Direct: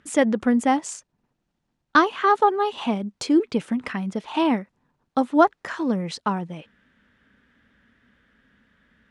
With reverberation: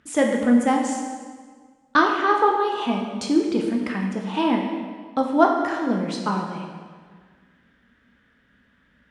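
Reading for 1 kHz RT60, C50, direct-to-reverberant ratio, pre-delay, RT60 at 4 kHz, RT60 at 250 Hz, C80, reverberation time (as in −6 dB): 1.6 s, 3.5 dB, 0.5 dB, 10 ms, 1.3 s, 1.8 s, 5.0 dB, 1.7 s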